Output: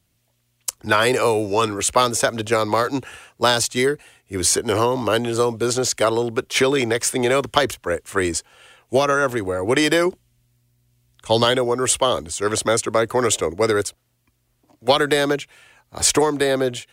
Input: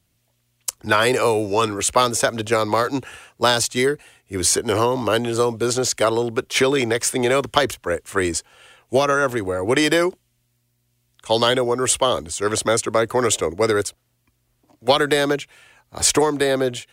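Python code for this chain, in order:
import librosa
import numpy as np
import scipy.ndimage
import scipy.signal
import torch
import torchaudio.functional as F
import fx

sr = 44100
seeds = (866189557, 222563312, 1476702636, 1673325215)

y = fx.low_shelf(x, sr, hz=180.0, db=8.5, at=(10.06, 11.45))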